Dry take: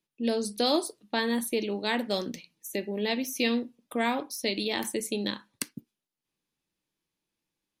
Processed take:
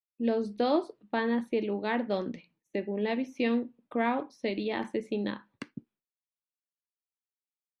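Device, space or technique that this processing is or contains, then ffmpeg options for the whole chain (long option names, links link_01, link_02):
hearing-loss simulation: -af "lowpass=1900,agate=range=-33dB:threshold=-60dB:ratio=3:detection=peak"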